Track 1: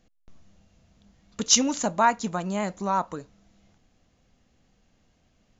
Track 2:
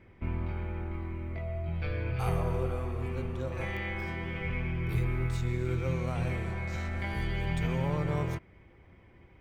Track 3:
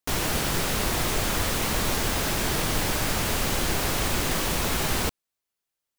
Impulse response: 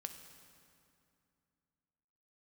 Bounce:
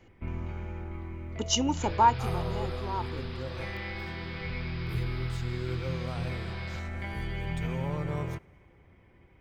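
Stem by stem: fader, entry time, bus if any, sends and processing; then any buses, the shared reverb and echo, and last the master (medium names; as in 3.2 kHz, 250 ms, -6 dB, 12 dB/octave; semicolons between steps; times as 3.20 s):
0.69 s -2 dB -> 0.93 s -11.5 dB -> 2.07 s -11.5 dB -> 2.40 s -19 dB, 0.00 s, no send, small resonant body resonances 370/870/2900 Hz, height 16 dB, ringing for 25 ms
-3.5 dB, 0.00 s, send -11 dB, none
-15.0 dB, 1.70 s, no send, high-pass 1.2 kHz; rippled Chebyshev low-pass 5.1 kHz, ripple 3 dB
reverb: on, RT60 2.5 s, pre-delay 3 ms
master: none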